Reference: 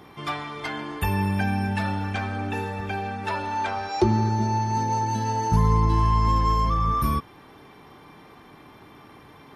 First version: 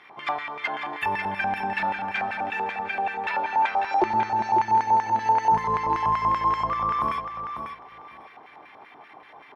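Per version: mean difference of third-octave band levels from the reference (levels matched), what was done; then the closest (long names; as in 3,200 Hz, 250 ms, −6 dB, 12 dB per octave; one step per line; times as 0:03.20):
7.5 dB: auto-filter band-pass square 5.2 Hz 770–2,100 Hz
repeating echo 546 ms, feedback 19%, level −7.5 dB
level +8 dB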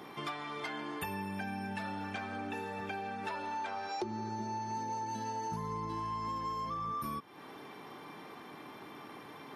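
5.5 dB: high-pass filter 190 Hz 12 dB per octave
downward compressor 4 to 1, threshold −38 dBFS, peak gain reduction 19 dB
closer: second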